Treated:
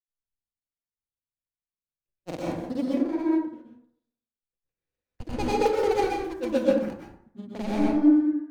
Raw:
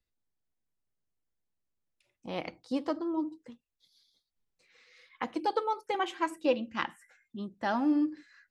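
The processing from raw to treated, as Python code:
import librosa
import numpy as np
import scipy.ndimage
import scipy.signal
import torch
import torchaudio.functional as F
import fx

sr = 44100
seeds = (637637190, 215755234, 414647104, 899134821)

y = scipy.ndimage.median_filter(x, 41, mode='constant')
y = fx.dynamic_eq(y, sr, hz=1500.0, q=0.8, threshold_db=-48.0, ratio=4.0, max_db=-5)
y = fx.rider(y, sr, range_db=4, speed_s=0.5)
y = fx.granulator(y, sr, seeds[0], grain_ms=100.0, per_s=20.0, spray_ms=100.0, spread_st=0)
y = fx.rev_plate(y, sr, seeds[1], rt60_s=0.84, hf_ratio=0.45, predelay_ms=110, drr_db=-4.0)
y = fx.band_widen(y, sr, depth_pct=70)
y = y * librosa.db_to_amplitude(6.0)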